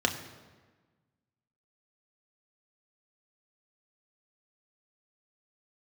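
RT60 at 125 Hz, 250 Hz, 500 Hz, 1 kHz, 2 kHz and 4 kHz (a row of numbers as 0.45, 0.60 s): 1.7, 1.6, 1.4, 1.3, 1.2, 1.0 s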